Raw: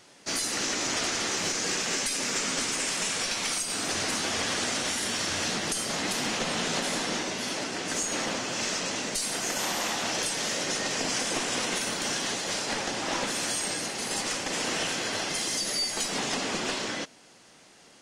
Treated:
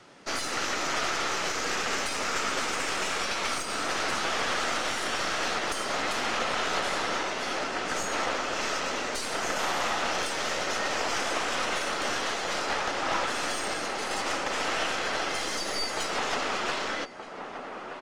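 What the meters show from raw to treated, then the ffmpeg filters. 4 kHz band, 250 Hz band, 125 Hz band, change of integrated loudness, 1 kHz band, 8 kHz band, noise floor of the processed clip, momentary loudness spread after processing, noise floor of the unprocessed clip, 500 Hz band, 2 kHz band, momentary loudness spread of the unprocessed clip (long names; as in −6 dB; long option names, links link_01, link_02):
−2.5 dB, −3.5 dB, −4.5 dB, −1.0 dB, +5.0 dB, −6.5 dB, −39 dBFS, 3 LU, −55 dBFS, +2.0 dB, +2.0 dB, 3 LU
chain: -filter_complex "[0:a]acrossover=split=310|490|2700[link_01][link_02][link_03][link_04];[link_01]acompressor=threshold=-55dB:ratio=6[link_05];[link_02]alimiter=level_in=16.5dB:limit=-24dB:level=0:latency=1:release=262,volume=-16.5dB[link_06];[link_05][link_06][link_03][link_04]amix=inputs=4:normalize=0,equalizer=frequency=1300:width=6.4:gain=6.5,asplit=2[link_07][link_08];[link_08]adelay=1224,volume=-6dB,highshelf=frequency=4000:gain=-27.6[link_09];[link_07][link_09]amix=inputs=2:normalize=0,aeval=exprs='(tanh(14.1*val(0)+0.65)-tanh(0.65))/14.1':channel_layout=same,aemphasis=mode=reproduction:type=75kf,volume=7.5dB"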